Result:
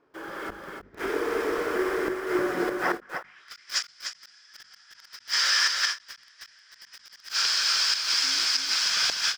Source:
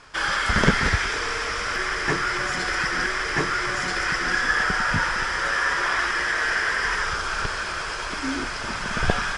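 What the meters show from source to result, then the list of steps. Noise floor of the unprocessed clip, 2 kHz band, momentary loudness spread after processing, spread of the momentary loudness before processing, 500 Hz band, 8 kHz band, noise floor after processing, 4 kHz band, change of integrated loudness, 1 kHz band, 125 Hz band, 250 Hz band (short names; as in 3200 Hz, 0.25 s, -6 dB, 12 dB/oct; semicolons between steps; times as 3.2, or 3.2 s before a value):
-30 dBFS, -9.5 dB, 16 LU, 7 LU, +1.0 dB, +3.0 dB, -57 dBFS, +4.5 dB, -1.5 dB, -9.5 dB, -22.0 dB, -3.5 dB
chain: band-pass sweep 350 Hz -> 4800 Hz, 2.66–3.54; flipped gate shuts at -26 dBFS, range -31 dB; high shelf 2100 Hz +3.5 dB; in parallel at -4.5 dB: requantised 8-bit, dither none; on the sum: AGC gain up to 11.5 dB; notches 50/100/150/200/250 Hz; on a send: echo 0.308 s -4.5 dB; on the sum: dynamic EQ 120 Hz, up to -6 dB, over -42 dBFS, Q 0.89; ending taper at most 300 dB/s; gain -4 dB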